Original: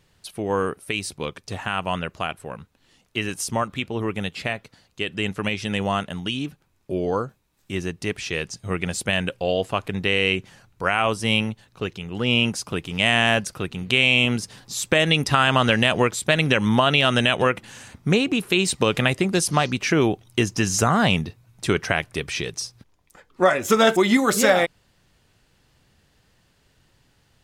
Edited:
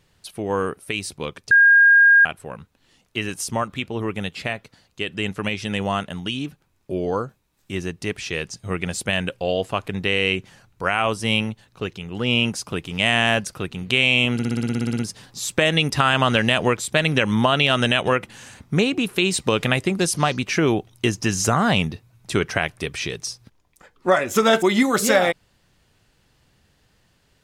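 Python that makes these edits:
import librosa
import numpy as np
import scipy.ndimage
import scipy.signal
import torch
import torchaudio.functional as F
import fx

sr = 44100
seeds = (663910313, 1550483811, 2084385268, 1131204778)

y = fx.edit(x, sr, fx.bleep(start_s=1.51, length_s=0.74, hz=1620.0, db=-9.0),
    fx.stutter(start_s=14.33, slice_s=0.06, count=12), tone=tone)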